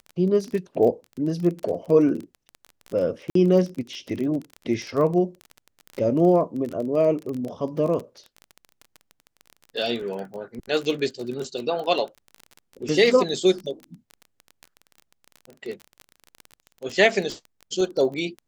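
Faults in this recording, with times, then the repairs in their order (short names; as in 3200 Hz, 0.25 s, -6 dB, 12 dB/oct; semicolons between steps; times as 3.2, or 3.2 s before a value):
crackle 25/s -29 dBFS
3.3–3.35 gap 53 ms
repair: de-click; interpolate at 3.3, 53 ms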